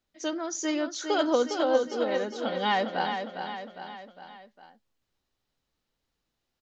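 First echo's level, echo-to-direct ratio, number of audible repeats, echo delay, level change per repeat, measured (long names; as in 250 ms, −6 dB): −7.0 dB, −5.5 dB, 4, 407 ms, −5.5 dB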